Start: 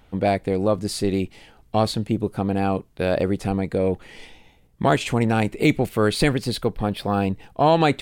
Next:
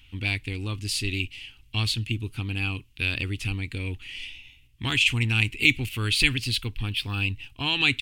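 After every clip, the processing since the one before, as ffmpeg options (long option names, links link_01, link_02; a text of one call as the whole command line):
ffmpeg -i in.wav -af "firequalizer=gain_entry='entry(120,0);entry(170,-19);entry(260,-7);entry(590,-30);entry(920,-14);entry(1700,-6);entry(2700,14);entry(3800,3);entry(7700,0)':delay=0.05:min_phase=1" out.wav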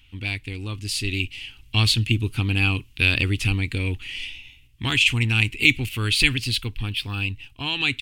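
ffmpeg -i in.wav -af "dynaudnorm=framelen=210:gausssize=13:maxgain=11.5dB,volume=-1dB" out.wav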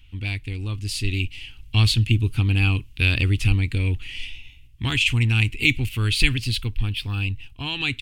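ffmpeg -i in.wav -af "lowshelf=frequency=120:gain=11,volume=-2.5dB" out.wav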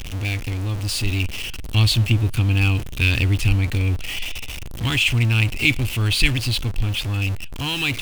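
ffmpeg -i in.wav -af "aeval=exprs='val(0)+0.5*0.0531*sgn(val(0))':channel_layout=same" out.wav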